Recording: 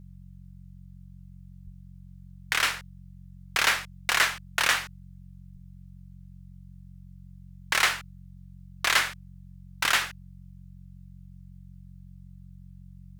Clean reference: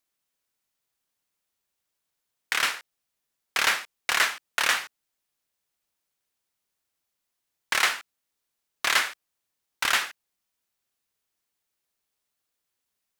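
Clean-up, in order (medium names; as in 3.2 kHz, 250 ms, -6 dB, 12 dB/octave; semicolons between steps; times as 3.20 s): de-hum 45.4 Hz, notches 4; 1.64–1.76 s: high-pass 140 Hz 24 dB/octave; 5.53–5.65 s: high-pass 140 Hz 24 dB/octave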